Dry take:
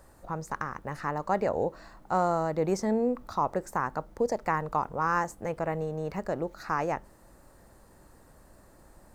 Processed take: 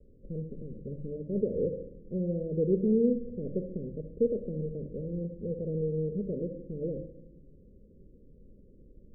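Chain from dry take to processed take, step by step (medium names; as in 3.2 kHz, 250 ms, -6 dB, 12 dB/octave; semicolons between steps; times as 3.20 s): steep low-pass 530 Hz 96 dB/octave; simulated room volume 2200 m³, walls furnished, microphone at 1.4 m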